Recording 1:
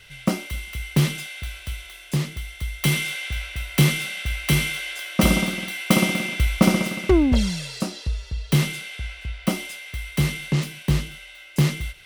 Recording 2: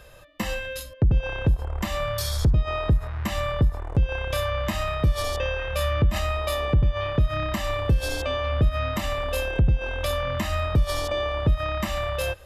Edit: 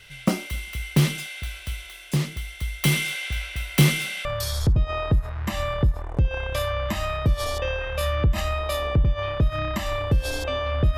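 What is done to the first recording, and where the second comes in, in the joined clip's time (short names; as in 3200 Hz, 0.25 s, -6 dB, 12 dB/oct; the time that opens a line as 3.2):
recording 1
4.25 switch to recording 2 from 2.03 s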